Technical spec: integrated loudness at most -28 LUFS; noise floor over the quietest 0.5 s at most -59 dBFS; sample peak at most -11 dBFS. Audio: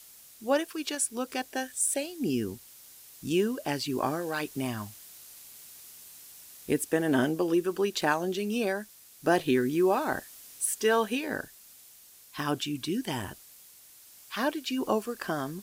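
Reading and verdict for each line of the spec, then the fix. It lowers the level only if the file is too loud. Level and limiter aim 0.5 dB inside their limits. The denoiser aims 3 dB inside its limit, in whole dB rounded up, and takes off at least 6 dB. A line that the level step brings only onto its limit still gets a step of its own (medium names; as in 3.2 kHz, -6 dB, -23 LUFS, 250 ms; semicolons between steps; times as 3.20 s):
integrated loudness -29.5 LUFS: pass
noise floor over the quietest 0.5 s -54 dBFS: fail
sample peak -11.5 dBFS: pass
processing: noise reduction 8 dB, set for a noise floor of -54 dBFS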